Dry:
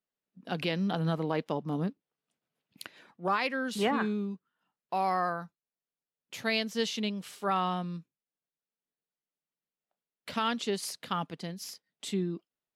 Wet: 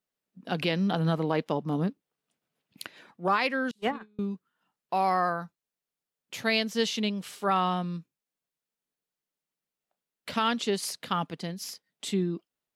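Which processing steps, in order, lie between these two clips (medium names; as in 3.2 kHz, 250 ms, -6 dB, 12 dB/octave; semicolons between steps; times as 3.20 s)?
3.71–4.19 s: gate -25 dBFS, range -36 dB; trim +3.5 dB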